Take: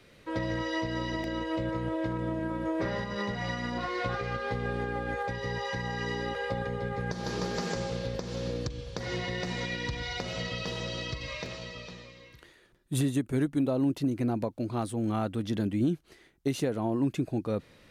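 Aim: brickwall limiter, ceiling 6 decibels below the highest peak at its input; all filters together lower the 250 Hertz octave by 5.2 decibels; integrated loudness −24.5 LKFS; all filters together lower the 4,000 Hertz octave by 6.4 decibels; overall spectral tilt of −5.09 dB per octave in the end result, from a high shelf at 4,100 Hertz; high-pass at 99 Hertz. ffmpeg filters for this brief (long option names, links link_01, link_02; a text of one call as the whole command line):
ffmpeg -i in.wav -af "highpass=99,equalizer=frequency=250:width_type=o:gain=-6.5,equalizer=frequency=4000:width_type=o:gain=-4.5,highshelf=frequency=4100:gain=-7,volume=12dB,alimiter=limit=-12.5dB:level=0:latency=1" out.wav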